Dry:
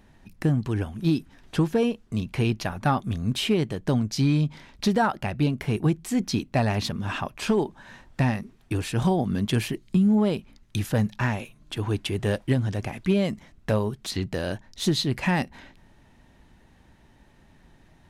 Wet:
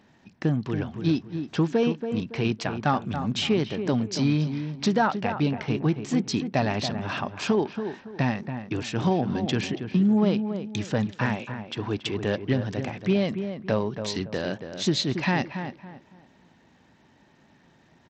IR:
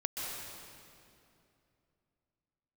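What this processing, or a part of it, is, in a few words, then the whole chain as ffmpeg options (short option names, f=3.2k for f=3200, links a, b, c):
Bluetooth headset: -filter_complex "[0:a]highpass=140,asplit=2[a][b];[b]adelay=280,lowpass=f=1.7k:p=1,volume=-8dB,asplit=2[c][d];[d]adelay=280,lowpass=f=1.7k:p=1,volume=0.31,asplit=2[e][f];[f]adelay=280,lowpass=f=1.7k:p=1,volume=0.31,asplit=2[g][h];[h]adelay=280,lowpass=f=1.7k:p=1,volume=0.31[i];[a][c][e][g][i]amix=inputs=5:normalize=0,aresample=16000,aresample=44100" -ar 32000 -c:a sbc -b:a 64k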